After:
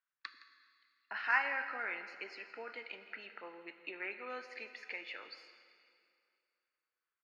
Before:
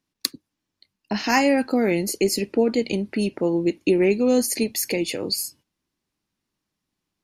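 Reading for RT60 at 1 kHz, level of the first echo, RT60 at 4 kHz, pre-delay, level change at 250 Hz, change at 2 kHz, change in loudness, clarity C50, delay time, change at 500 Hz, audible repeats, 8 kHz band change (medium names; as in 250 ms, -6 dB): 2.4 s, -16.5 dB, 2.2 s, 6 ms, -36.5 dB, -6.5 dB, -17.5 dB, 9.0 dB, 165 ms, -27.5 dB, 1, under -40 dB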